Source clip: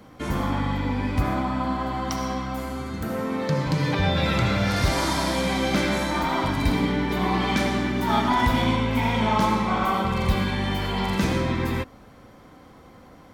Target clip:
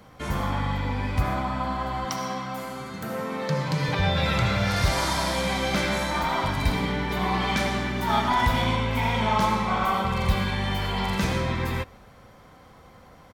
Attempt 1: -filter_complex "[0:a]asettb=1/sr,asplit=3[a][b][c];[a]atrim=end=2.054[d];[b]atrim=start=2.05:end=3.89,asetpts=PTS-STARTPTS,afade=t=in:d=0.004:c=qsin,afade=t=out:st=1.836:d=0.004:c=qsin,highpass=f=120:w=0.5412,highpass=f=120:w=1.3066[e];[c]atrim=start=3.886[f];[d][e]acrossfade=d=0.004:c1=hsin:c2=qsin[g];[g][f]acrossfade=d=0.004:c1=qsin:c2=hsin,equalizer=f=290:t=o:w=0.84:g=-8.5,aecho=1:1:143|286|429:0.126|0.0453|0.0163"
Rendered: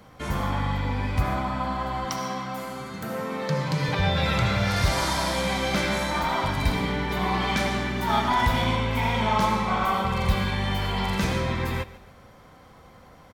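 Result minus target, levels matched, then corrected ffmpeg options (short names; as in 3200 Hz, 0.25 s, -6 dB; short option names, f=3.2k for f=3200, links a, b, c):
echo-to-direct +10.5 dB
-filter_complex "[0:a]asettb=1/sr,asplit=3[a][b][c];[a]atrim=end=2.054[d];[b]atrim=start=2.05:end=3.89,asetpts=PTS-STARTPTS,afade=t=in:d=0.004:c=qsin,afade=t=out:st=1.836:d=0.004:c=qsin,highpass=f=120:w=0.5412,highpass=f=120:w=1.3066[e];[c]atrim=start=3.886[f];[d][e]acrossfade=d=0.004:c1=hsin:c2=qsin[g];[g][f]acrossfade=d=0.004:c1=qsin:c2=hsin,equalizer=f=290:t=o:w=0.84:g=-8.5,aecho=1:1:143|286:0.0376|0.0135"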